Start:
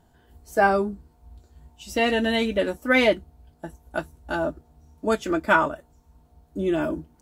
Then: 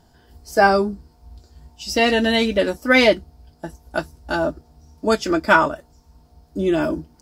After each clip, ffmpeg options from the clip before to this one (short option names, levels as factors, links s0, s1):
-af "equalizer=f=5000:t=o:w=0.39:g=13.5,volume=1.68"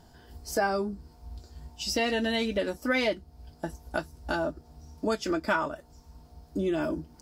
-af "acompressor=threshold=0.0316:ratio=2.5"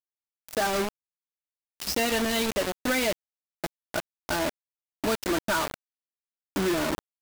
-af "asoftclip=type=tanh:threshold=0.0531,acrusher=bits=4:mix=0:aa=0.000001,volume=1.26"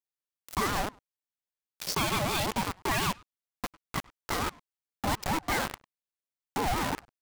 -filter_complex "[0:a]asplit=2[s0][s1];[s1]adelay=100,highpass=300,lowpass=3400,asoftclip=type=hard:threshold=0.0299,volume=0.126[s2];[s0][s2]amix=inputs=2:normalize=0,aeval=exprs='val(0)*sin(2*PI*510*n/s+510*0.3/5.6*sin(2*PI*5.6*n/s))':c=same"